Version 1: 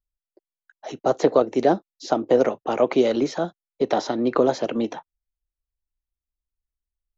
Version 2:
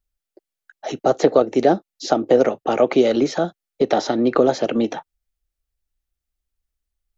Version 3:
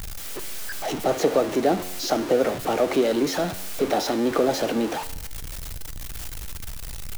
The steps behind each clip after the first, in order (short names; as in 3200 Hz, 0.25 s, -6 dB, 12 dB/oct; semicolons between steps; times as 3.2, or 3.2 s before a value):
notch 1000 Hz, Q 6.5; in parallel at 0 dB: compressor, threshold -26 dBFS, peak gain reduction 14 dB; on the sum: gain +1 dB
zero-crossing step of -19 dBFS; resonator 91 Hz, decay 0.95 s, harmonics all, mix 60%